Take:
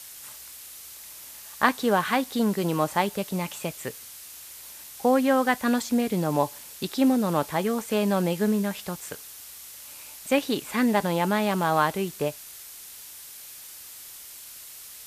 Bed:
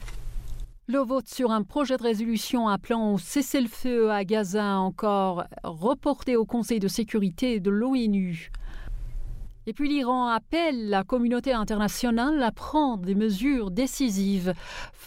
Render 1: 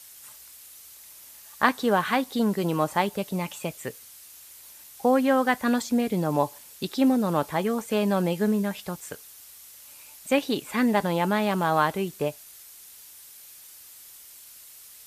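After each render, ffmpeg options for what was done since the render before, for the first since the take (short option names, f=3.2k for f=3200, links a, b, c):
-af "afftdn=nr=6:nf=-44"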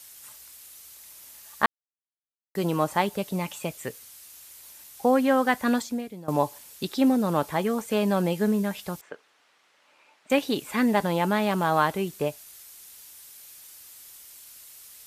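-filter_complex "[0:a]asettb=1/sr,asplit=3[a][b][c];[a]atrim=end=9.014[d];[b]atrim=start=9.01:end=10.3,asetpts=PTS-STARTPTS,afade=t=in:d=0.004:c=qsin,afade=t=out:st=1.286:d=0.004:c=qsin,highpass=320,lowpass=2.1k[e];[c]atrim=start=10.296[f];[d][e]acrossfade=d=0.004:c1=hsin:c2=qsin[g];[g][f]acrossfade=d=0.004:c1=qsin:c2=hsin,asplit=4[h][i][j][k];[h]atrim=end=1.66,asetpts=PTS-STARTPTS,afade=t=out:st=1.656:d=0.004:c=hsin[l];[i]atrim=start=1.66:end=2.55,asetpts=PTS-STARTPTS,volume=0[m];[j]atrim=start=2.55:end=6.28,asetpts=PTS-STARTPTS,afade=t=in:d=0.004:c=hsin,afade=t=out:st=3.21:d=0.52:c=qua:silence=0.141254[n];[k]atrim=start=6.28,asetpts=PTS-STARTPTS,afade=t=in:d=0.004:c=hsin:silence=0.141254[o];[l][m][n][o]concat=n=4:v=0:a=1"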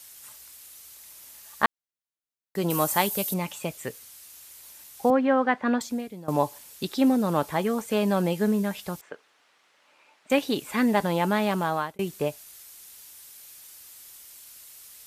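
-filter_complex "[0:a]asettb=1/sr,asplit=3[a][b][c];[a]atrim=end=2.704[d];[b]atrim=start=2.7:end=3.34,asetpts=PTS-STARTPTS,afade=t=in:d=0.004:c=qsin,afade=t=out:st=0.636:d=0.004:c=qsin,aemphasis=mode=production:type=75fm[e];[c]atrim=start=3.336[f];[d][e]acrossfade=d=0.004:c1=hsin:c2=qsin[g];[g][f]acrossfade=d=0.004:c1=qsin:c2=hsin,asettb=1/sr,asplit=3[h][i][j];[h]atrim=end=5.104[k];[i]atrim=start=5.1:end=5.81,asetpts=PTS-STARTPTS,afade=t=in:d=0.004:c=qsin,afade=t=out:st=0.706:d=0.004:c=qsin,highpass=170,lowpass=2.4k[l];[j]atrim=start=5.806[m];[k][l]acrossfade=d=0.004:c1=hsin:c2=qsin[n];[n][m]acrossfade=d=0.004:c1=qsin:c2=hsin,asplit=2[o][p];[o]atrim=end=11.99,asetpts=PTS-STARTPTS,afade=t=out:st=11.39:d=0.6:c=qsin[q];[p]atrim=start=11.99,asetpts=PTS-STARTPTS,afade=t=in:d=0.004:c=hsin[r];[q][r]concat=n=2:v=0:a=1"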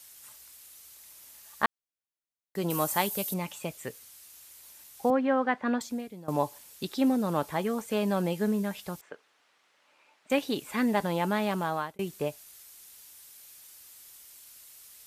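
-af "volume=-4dB"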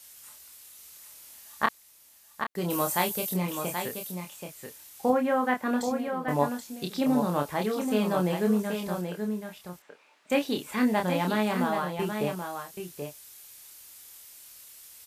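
-filter_complex "[0:a]asplit=2[a][b];[b]adelay=28,volume=-4.5dB[c];[a][c]amix=inputs=2:normalize=0,asplit=2[d][e];[e]aecho=0:1:780:0.473[f];[d][f]amix=inputs=2:normalize=0"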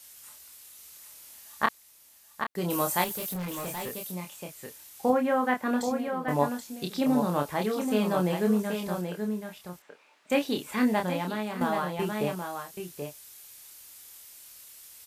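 -filter_complex "[0:a]asettb=1/sr,asplit=3[a][b][c];[a]atrim=end=3.044[d];[b]atrim=start=3.04:end=4.12,asetpts=PTS-STARTPTS,afade=t=in:d=0.004:c=qsin,afade=t=out:st=1.076:d=0.004:c=qsin,volume=31.5dB,asoftclip=hard,volume=-31.5dB[e];[c]atrim=start=4.116[f];[d][e]acrossfade=d=0.004:c1=hsin:c2=qsin[g];[g][f]acrossfade=d=0.004:c1=qsin:c2=hsin,asplit=2[h][i];[h]atrim=end=11.61,asetpts=PTS-STARTPTS,afade=t=out:st=10.93:d=0.68:c=qua:silence=0.446684[j];[i]atrim=start=11.61,asetpts=PTS-STARTPTS,afade=t=in:d=0.004:c=hsin:silence=0.446684[k];[j][k]concat=n=2:v=0:a=1"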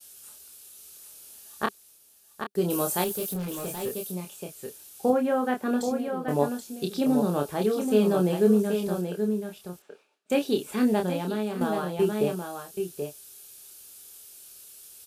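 -af "agate=range=-33dB:threshold=-53dB:ratio=3:detection=peak,equalizer=f=200:t=o:w=0.33:g=4,equalizer=f=400:t=o:w=0.33:g=10,equalizer=f=1k:t=o:w=0.33:g=-7,equalizer=f=2k:t=o:w=0.33:g=-10,equalizer=f=10k:t=o:w=0.33:g=4"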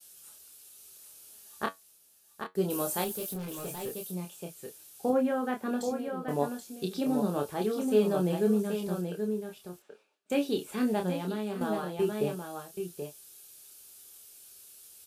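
-af "flanger=delay=5.8:depth=5.3:regen=63:speed=0.23:shape=sinusoidal"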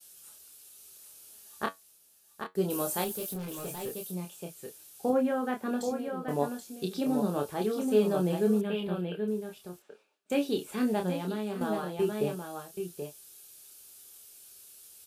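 -filter_complex "[0:a]asettb=1/sr,asplit=3[a][b][c];[a]atrim=end=8.614[d];[b]atrim=start=8.61:end=9.28,asetpts=PTS-STARTPTS,afade=t=in:d=0.004:c=qsin,afade=t=out:st=0.666:d=0.004:c=qsin,highshelf=f=4.3k:t=q:w=3:g=-12.5[e];[c]atrim=start=9.276[f];[d][e]acrossfade=d=0.004:c1=hsin:c2=qsin[g];[g][f]acrossfade=d=0.004:c1=qsin:c2=hsin"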